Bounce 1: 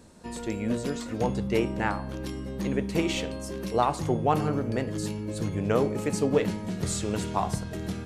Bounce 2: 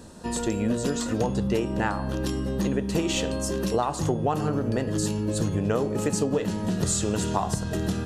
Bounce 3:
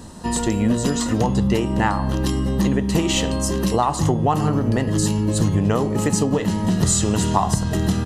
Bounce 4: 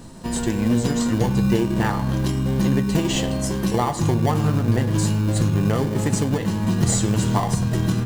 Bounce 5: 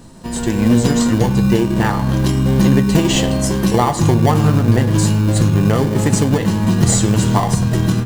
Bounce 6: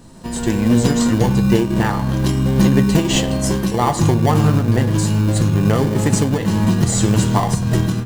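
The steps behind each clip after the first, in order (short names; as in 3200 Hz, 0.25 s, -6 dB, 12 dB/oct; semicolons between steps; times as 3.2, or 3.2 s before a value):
notch 2200 Hz, Q 5.5; dynamic EQ 7100 Hz, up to +5 dB, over -53 dBFS, Q 2.3; compressor 6:1, threshold -29 dBFS, peak gain reduction 11.5 dB; gain +7.5 dB
comb 1 ms, depth 36%; gain +6 dB
shoebox room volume 3200 m³, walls furnished, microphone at 0.77 m; in parallel at -7 dB: sample-rate reducer 1300 Hz, jitter 0%; on the sum: flange 0.35 Hz, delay 7.4 ms, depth 1.4 ms, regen +63%
AGC
noise-modulated level, depth 55%; gain +1 dB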